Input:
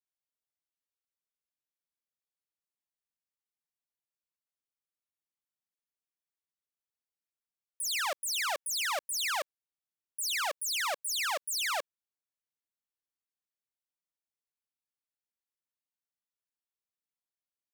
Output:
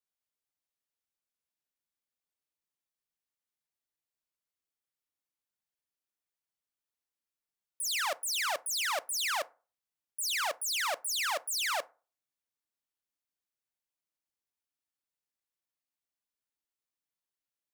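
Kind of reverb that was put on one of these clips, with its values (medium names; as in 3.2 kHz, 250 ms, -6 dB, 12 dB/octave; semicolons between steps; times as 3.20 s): FDN reverb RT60 0.35 s, low-frequency decay 0.95×, high-frequency decay 0.5×, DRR 15 dB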